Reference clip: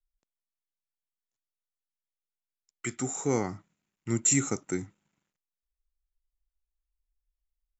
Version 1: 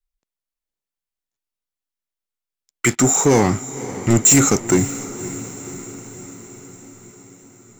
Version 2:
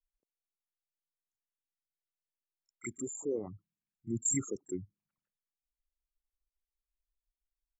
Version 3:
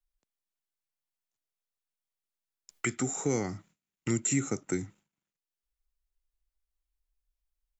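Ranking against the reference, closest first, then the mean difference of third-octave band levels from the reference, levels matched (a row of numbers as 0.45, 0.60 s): 3, 1, 2; 2.5, 7.5, 11.5 dB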